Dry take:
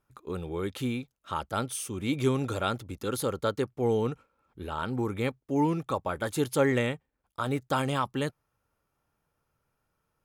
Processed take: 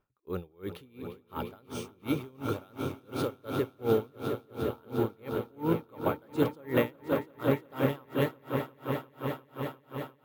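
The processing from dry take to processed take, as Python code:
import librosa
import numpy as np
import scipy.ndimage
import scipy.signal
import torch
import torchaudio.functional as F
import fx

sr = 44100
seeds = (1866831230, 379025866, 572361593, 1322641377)

p1 = scipy.signal.sosfilt(scipy.signal.butter(2, 4600.0, 'lowpass', fs=sr, output='sos'), x)
p2 = np.repeat(p1[::3], 3)[:len(p1)]
p3 = fx.peak_eq(p2, sr, hz=440.0, db=3.0, octaves=1.4)
p4 = p3 + fx.echo_swell(p3, sr, ms=176, loudest=5, wet_db=-10.0, dry=0)
y = p4 * 10.0 ** (-32 * (0.5 - 0.5 * np.cos(2.0 * np.pi * 2.8 * np.arange(len(p4)) / sr)) / 20.0)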